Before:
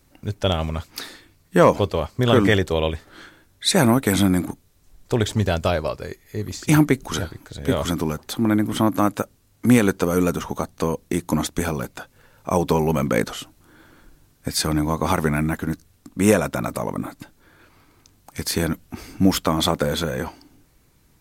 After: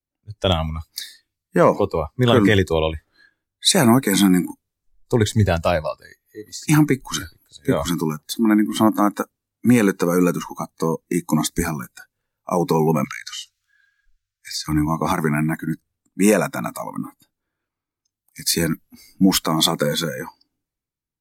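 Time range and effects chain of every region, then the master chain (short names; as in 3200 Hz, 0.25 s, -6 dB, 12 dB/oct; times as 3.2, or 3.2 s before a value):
13.04–14.68 inverse Chebyshev band-stop 270–540 Hz, stop band 70 dB + band shelf 3000 Hz +11 dB 2.8 oct + compressor 8:1, threshold -28 dBFS
whole clip: spectral noise reduction 19 dB; maximiser +8 dB; three-band expander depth 40%; gain -5 dB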